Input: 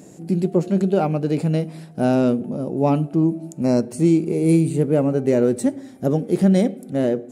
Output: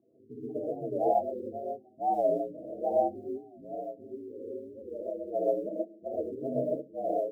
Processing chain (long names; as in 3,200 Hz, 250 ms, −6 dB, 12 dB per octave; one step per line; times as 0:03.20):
adaptive Wiener filter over 25 samples
low-pass filter 8,700 Hz 24 dB per octave
low-shelf EQ 310 Hz −4 dB
notch filter 1,100 Hz, Q 6.9
0:03.23–0:05.34: downward compressor 10 to 1, threshold −24 dBFS, peak gain reduction 10.5 dB
spectral peaks only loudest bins 8
ring modulation 58 Hz
formant filter a
floating-point word with a short mantissa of 6 bits
reverb whose tail is shaped and stops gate 160 ms rising, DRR −6 dB
wow of a warped record 45 rpm, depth 160 cents
level +2 dB